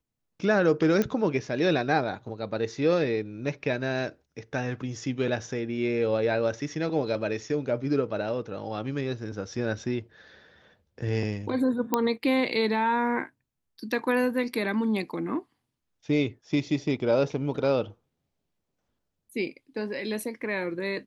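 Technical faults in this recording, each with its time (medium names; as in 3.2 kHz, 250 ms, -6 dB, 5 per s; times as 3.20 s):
1.02 s: pop -13 dBFS
11.94 s: pop -9 dBFS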